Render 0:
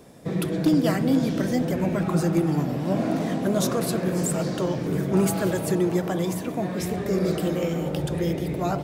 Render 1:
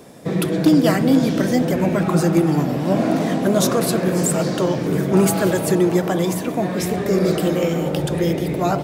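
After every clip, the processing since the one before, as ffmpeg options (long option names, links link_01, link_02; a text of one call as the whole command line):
ffmpeg -i in.wav -af "lowshelf=frequency=84:gain=-10.5,volume=7dB" out.wav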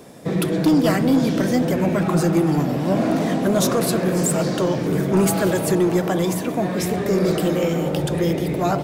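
ffmpeg -i in.wav -af "asoftclip=type=tanh:threshold=-9.5dB" out.wav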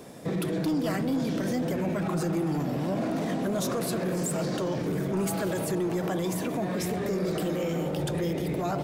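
ffmpeg -i in.wav -af "alimiter=limit=-19.5dB:level=0:latency=1:release=76,volume=-2.5dB" out.wav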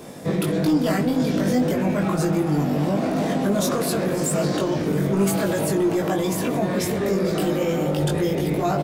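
ffmpeg -i in.wav -filter_complex "[0:a]asplit=2[link_01][link_02];[link_02]adelay=20,volume=-2.5dB[link_03];[link_01][link_03]amix=inputs=2:normalize=0,volume=5dB" out.wav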